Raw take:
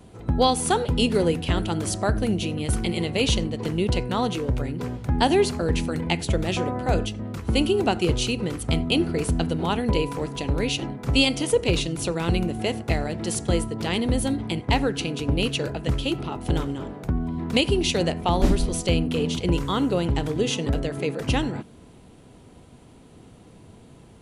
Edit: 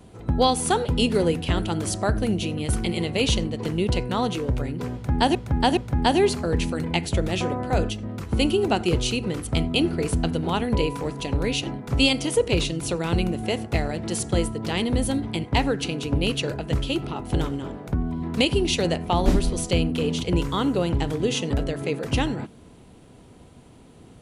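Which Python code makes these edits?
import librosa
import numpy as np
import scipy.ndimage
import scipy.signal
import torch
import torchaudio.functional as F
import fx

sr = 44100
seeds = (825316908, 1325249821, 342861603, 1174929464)

y = fx.edit(x, sr, fx.repeat(start_s=4.93, length_s=0.42, count=3), tone=tone)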